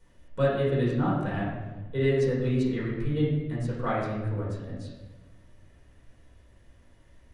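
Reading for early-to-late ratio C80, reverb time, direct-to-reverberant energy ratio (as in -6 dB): 3.0 dB, 1.2 s, -8.0 dB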